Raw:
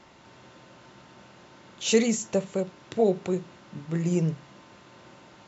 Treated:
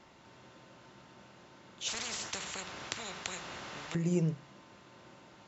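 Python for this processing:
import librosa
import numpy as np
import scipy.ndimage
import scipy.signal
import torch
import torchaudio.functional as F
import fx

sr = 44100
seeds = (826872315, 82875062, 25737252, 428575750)

y = fx.spectral_comp(x, sr, ratio=10.0, at=(1.88, 3.95))
y = y * 10.0 ** (-5.0 / 20.0)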